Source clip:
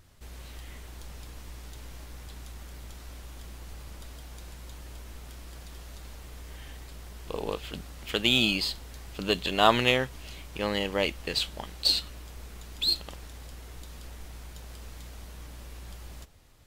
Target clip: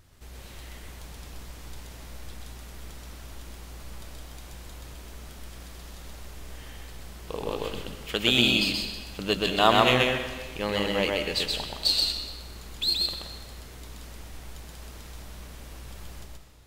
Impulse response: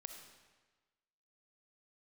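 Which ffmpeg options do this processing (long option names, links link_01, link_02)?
-filter_complex "[0:a]asplit=2[link_01][link_02];[1:a]atrim=start_sample=2205,adelay=128[link_03];[link_02][link_03]afir=irnorm=-1:irlink=0,volume=4dB[link_04];[link_01][link_04]amix=inputs=2:normalize=0"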